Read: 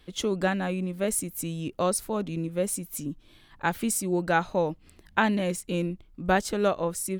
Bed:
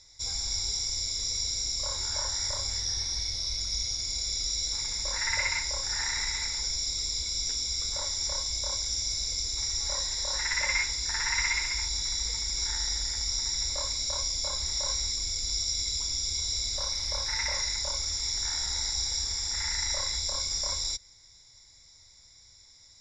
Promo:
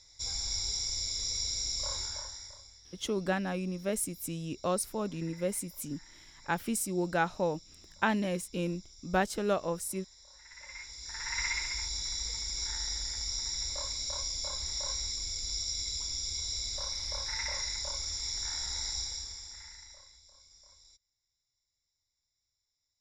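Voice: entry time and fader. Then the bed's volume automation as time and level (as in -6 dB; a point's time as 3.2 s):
2.85 s, -5.0 dB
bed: 1.97 s -3 dB
2.79 s -25.5 dB
10.4 s -25.5 dB
11.43 s -5 dB
18.97 s -5 dB
20.22 s -28.5 dB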